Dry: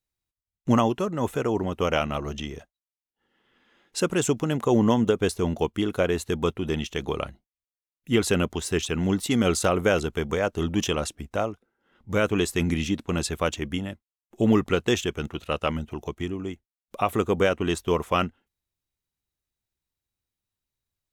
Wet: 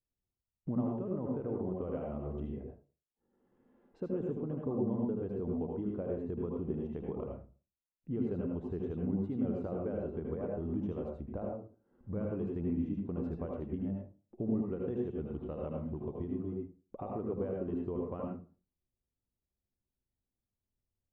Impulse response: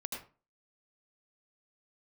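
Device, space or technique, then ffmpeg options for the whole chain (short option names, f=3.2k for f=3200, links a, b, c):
television next door: -filter_complex "[0:a]acompressor=threshold=-35dB:ratio=3,lowpass=580[a];[1:a]atrim=start_sample=2205[b];[a][b]afir=irnorm=-1:irlink=0,asettb=1/sr,asplit=3[c][d][e];[c]atrim=end=15.174[f];[d]atrim=start=15.17:end=16.5,asetpts=PTS-STARTPTS,afade=t=in:d=0.004:c=qsin,afade=t=out:st=1.326:d=0.004:c=qsin,equalizer=f=3.6k:w=4.7:g=8[g];[e]atrim=start=16.496[h];[f][g]acrossfade=d=0.004:c1=hsin:c2=qsin[i];[i][h]acrossfade=d=0.004:c1=qsin:c2=hsin"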